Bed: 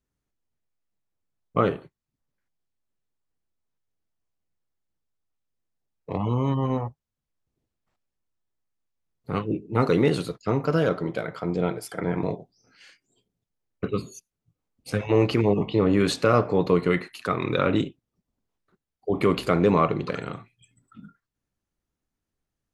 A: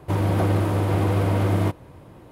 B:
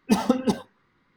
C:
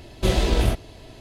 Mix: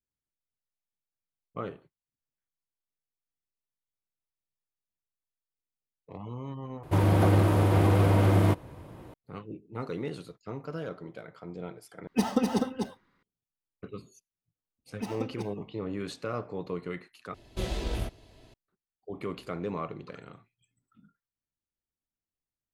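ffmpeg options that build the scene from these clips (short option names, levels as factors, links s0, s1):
-filter_complex "[2:a]asplit=2[s0][s1];[0:a]volume=0.188[s2];[s0]aecho=1:1:249:0.631[s3];[s2]asplit=4[s4][s5][s6][s7];[s4]atrim=end=6.834[s8];[1:a]atrim=end=2.31,asetpts=PTS-STARTPTS,volume=0.891[s9];[s5]atrim=start=9.136:end=12.074[s10];[s3]atrim=end=1.16,asetpts=PTS-STARTPTS,volume=0.531[s11];[s6]atrim=start=13.226:end=17.344[s12];[3:a]atrim=end=1.2,asetpts=PTS-STARTPTS,volume=0.251[s13];[s7]atrim=start=18.536[s14];[s1]atrim=end=1.16,asetpts=PTS-STARTPTS,volume=0.168,afade=t=in:d=0.004:c=hsin,afade=t=out:st=1.156:d=0.004:c=hsin,adelay=14910[s15];[s8][s9]acrossfade=d=0.004:c1=hsin:c2=hsin[s16];[s16][s10]acrossfade=d=0.004:c1=hsin:c2=hsin[s17];[s17][s11]acrossfade=d=0.004:c1=hsin:c2=hsin[s18];[s18][s12]acrossfade=d=0.004:c1=hsin:c2=hsin[s19];[s19][s13]acrossfade=d=0.004:c1=hsin:c2=hsin[s20];[s20][s14]acrossfade=d=0.004:c1=hsin:c2=hsin[s21];[s21][s15]amix=inputs=2:normalize=0"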